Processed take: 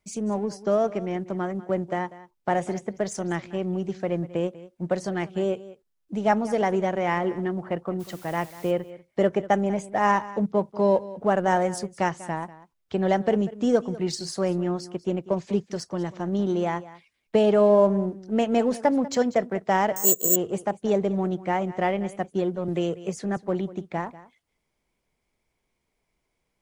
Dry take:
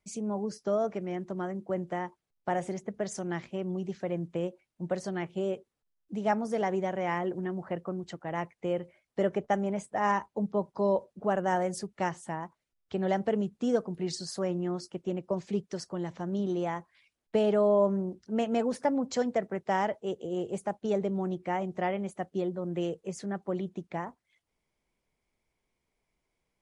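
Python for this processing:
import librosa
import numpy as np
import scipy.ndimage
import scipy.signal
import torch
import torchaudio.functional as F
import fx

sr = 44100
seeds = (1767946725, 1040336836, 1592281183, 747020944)

p1 = np.sign(x) * np.maximum(np.abs(x) - 10.0 ** (-39.5 / 20.0), 0.0)
p2 = x + F.gain(torch.from_numpy(p1), -9.5).numpy()
p3 = fx.dmg_noise_colour(p2, sr, seeds[0], colour='white', level_db=-54.0, at=(7.99, 8.7), fade=0.02)
p4 = p3 + 10.0 ** (-17.5 / 20.0) * np.pad(p3, (int(193 * sr / 1000.0), 0))[:len(p3)]
p5 = fx.resample_bad(p4, sr, factor=6, down='none', up='zero_stuff', at=(19.96, 20.36))
p6 = fx.band_squash(p5, sr, depth_pct=40, at=(22.68, 23.37))
y = F.gain(torch.from_numpy(p6), 4.0).numpy()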